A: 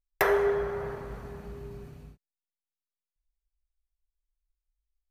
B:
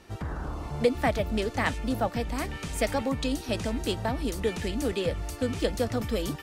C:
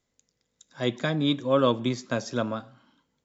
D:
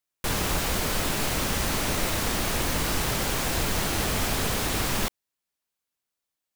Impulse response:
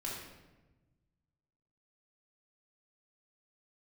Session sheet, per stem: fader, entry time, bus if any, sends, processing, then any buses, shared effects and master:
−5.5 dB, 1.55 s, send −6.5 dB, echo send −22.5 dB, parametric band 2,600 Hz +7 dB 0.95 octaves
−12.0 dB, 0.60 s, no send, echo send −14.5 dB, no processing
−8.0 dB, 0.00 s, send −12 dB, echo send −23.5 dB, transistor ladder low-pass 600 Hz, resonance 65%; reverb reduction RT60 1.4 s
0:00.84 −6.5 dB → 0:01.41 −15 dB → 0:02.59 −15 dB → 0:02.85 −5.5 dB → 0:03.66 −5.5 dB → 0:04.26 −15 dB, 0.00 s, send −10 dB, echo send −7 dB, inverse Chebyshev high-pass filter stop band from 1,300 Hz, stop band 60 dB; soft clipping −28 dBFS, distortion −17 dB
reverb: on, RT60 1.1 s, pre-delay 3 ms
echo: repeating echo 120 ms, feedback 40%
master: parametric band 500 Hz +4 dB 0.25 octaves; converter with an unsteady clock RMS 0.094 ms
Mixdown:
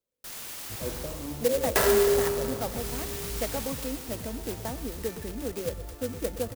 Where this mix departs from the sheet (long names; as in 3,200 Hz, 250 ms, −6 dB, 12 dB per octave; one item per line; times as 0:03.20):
stem B −12.0 dB → −6.0 dB
reverb return +6.5 dB